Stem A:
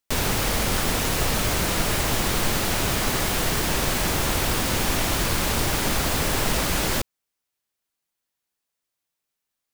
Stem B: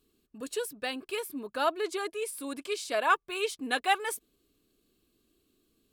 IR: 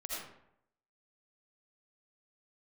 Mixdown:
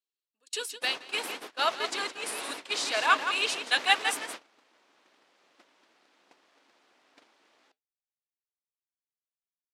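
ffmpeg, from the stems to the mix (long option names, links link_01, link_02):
-filter_complex "[0:a]aeval=exprs='val(0)*sin(2*PI*280*n/s)':channel_layout=same,adelay=700,volume=-4dB[link_01];[1:a]crystalizer=i=8.5:c=0,volume=1dB,asplit=2[link_02][link_03];[link_03]volume=-8.5dB,aecho=0:1:168:1[link_04];[link_01][link_02][link_04]amix=inputs=3:normalize=0,agate=range=-27dB:threshold=-24dB:ratio=16:detection=peak,flanger=delay=1:depth=4.9:regen=-81:speed=2:shape=triangular,highpass=540,lowpass=4500"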